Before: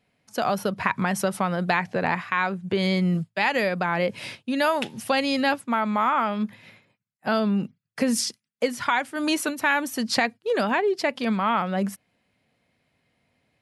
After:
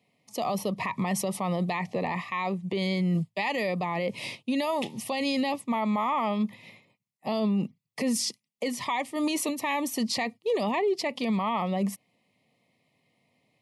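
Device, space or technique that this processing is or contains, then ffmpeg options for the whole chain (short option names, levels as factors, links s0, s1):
PA system with an anti-feedback notch: -af "highpass=f=110:w=0.5412,highpass=f=110:w=1.3066,asuperstop=centerf=1500:order=8:qfactor=2.5,alimiter=limit=0.1:level=0:latency=1:release=14"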